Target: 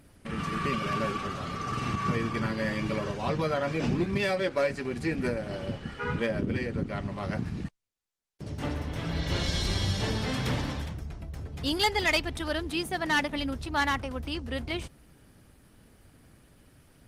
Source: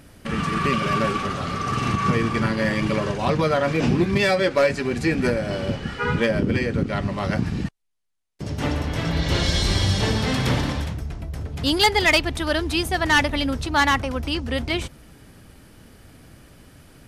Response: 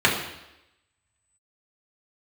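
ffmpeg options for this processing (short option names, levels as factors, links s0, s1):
-filter_complex "[0:a]asettb=1/sr,asplit=3[s0][s1][s2];[s0]atrim=end=12.684[s3];[s1]atrim=start=12.68:end=13.39,asetpts=PTS-STARTPTS,afade=t=in:d=0.004:c=qsin,afade=t=out:st=0.706:d=0.004:c=qsin,lowshelf=f=130:t=q:w=3:g=-7[s4];[s2]atrim=start=13.386[s5];[s3][s4]acrossfade=d=0.004:c1=hsin:c2=qsin[s6];[s6][s5]acrossfade=d=0.004:c1=qsin:c2=hsin,volume=0.398" -ar 48000 -c:a libopus -b:a 24k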